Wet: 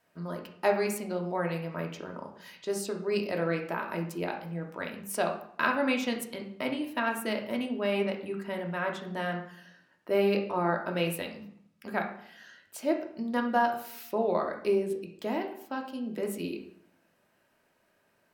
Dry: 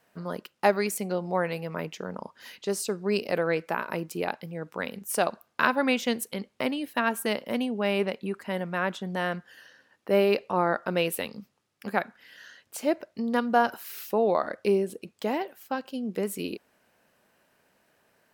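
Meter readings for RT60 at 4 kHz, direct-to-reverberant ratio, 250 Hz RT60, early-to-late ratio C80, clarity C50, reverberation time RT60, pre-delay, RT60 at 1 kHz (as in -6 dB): 0.50 s, 1.5 dB, 0.80 s, 11.5 dB, 7.5 dB, 0.65 s, 3 ms, 0.70 s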